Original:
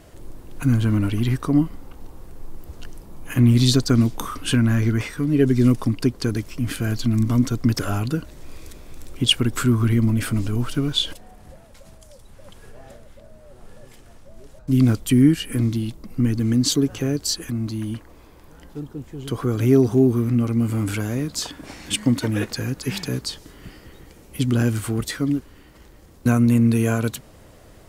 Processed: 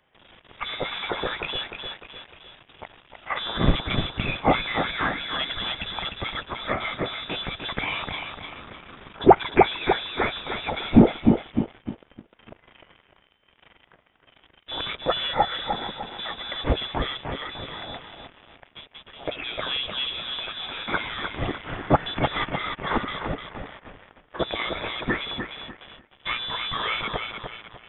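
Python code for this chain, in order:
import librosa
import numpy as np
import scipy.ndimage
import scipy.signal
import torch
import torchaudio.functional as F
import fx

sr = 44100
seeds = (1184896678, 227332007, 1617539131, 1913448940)

p1 = fx.high_shelf(x, sr, hz=2000.0, db=7.5)
p2 = p1 + fx.echo_feedback(p1, sr, ms=302, feedback_pct=43, wet_db=-7, dry=0)
p3 = fx.leveller(p2, sr, passes=3)
p4 = np.diff(p3, prepend=0.0)
p5 = fx.freq_invert(p4, sr, carrier_hz=3700)
y = p5 * librosa.db_to_amplitude(3.0)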